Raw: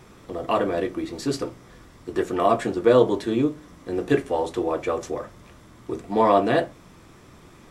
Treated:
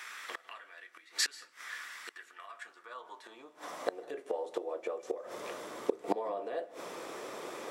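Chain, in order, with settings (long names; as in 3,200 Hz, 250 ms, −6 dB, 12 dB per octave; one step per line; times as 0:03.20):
brickwall limiter −13 dBFS, peak gain reduction 8 dB
gate with flip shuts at −22 dBFS, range −26 dB
high-pass filter sweep 1,700 Hz → 490 Hz, 0:02.38–0:04.20
on a send: convolution reverb RT60 0.30 s, pre-delay 148 ms, DRR 19.5 dB
on the sum: level +7 dB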